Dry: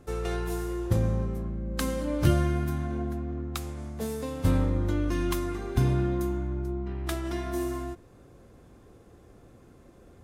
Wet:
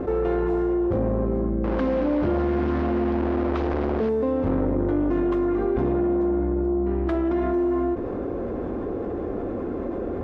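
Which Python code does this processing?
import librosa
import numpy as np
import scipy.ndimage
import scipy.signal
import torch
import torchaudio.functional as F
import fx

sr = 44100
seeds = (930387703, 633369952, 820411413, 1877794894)

y = fx.delta_mod(x, sr, bps=32000, step_db=-29.0, at=(1.64, 4.09))
y = fx.peak_eq(y, sr, hz=140.0, db=-14.0, octaves=0.6)
y = 10.0 ** (-29.0 / 20.0) * np.tanh(y / 10.0 ** (-29.0 / 20.0))
y = scipy.signal.sosfilt(scipy.signal.butter(2, 1900.0, 'lowpass', fs=sr, output='sos'), y)
y = fx.peak_eq(y, sr, hz=340.0, db=12.0, octaves=2.9)
y = fx.env_flatten(y, sr, amount_pct=70)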